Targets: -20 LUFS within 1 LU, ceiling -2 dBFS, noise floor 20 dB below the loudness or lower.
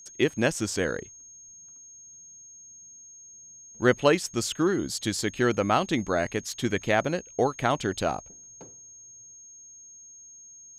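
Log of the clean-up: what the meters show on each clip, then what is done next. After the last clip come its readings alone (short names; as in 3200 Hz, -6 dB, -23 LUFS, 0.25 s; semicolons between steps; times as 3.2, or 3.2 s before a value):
steady tone 6500 Hz; tone level -46 dBFS; loudness -26.5 LUFS; peak -6.0 dBFS; loudness target -20.0 LUFS
-> notch 6500 Hz, Q 30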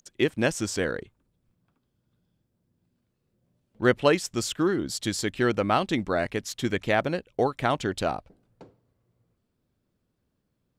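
steady tone none; loudness -26.5 LUFS; peak -6.0 dBFS; loudness target -20.0 LUFS
-> gain +6.5 dB; limiter -2 dBFS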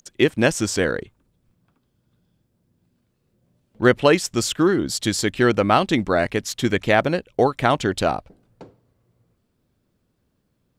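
loudness -20.5 LUFS; peak -2.0 dBFS; noise floor -70 dBFS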